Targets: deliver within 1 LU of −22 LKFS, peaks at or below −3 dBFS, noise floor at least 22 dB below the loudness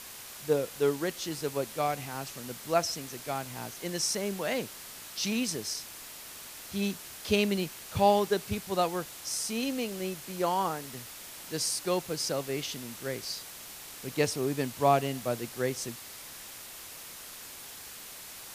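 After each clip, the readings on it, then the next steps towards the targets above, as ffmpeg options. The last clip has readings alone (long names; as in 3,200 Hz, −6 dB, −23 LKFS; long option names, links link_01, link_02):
background noise floor −46 dBFS; target noise floor −54 dBFS; integrated loudness −31.5 LKFS; sample peak −11.0 dBFS; target loudness −22.0 LKFS
→ -af "afftdn=noise_reduction=8:noise_floor=-46"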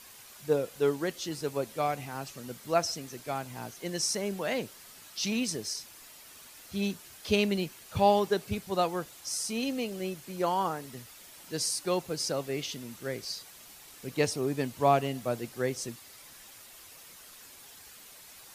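background noise floor −52 dBFS; target noise floor −54 dBFS
→ -af "afftdn=noise_reduction=6:noise_floor=-52"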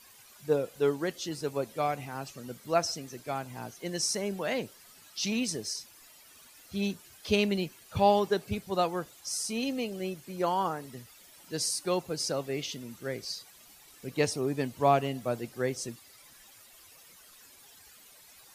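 background noise floor −56 dBFS; integrated loudness −31.5 LKFS; sample peak −11.0 dBFS; target loudness −22.0 LKFS
→ -af "volume=9.5dB,alimiter=limit=-3dB:level=0:latency=1"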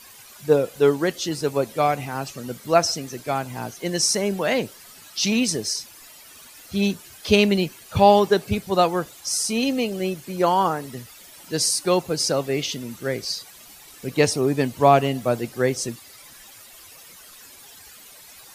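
integrated loudness −22.0 LKFS; sample peak −3.0 dBFS; background noise floor −46 dBFS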